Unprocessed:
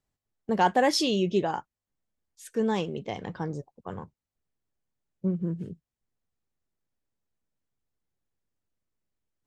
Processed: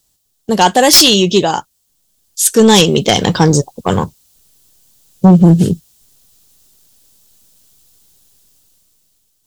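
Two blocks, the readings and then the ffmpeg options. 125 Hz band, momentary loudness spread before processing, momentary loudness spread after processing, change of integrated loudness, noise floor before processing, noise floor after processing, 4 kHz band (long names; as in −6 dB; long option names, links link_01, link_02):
+21.5 dB, 18 LU, 13 LU, +17.5 dB, below −85 dBFS, −63 dBFS, +22.5 dB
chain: -af "aexciter=amount=5.2:drive=4.9:freq=3000,dynaudnorm=framelen=500:gausssize=5:maxgain=13dB,aeval=exprs='0.841*sin(PI/2*2.82*val(0)/0.841)':channel_layout=same"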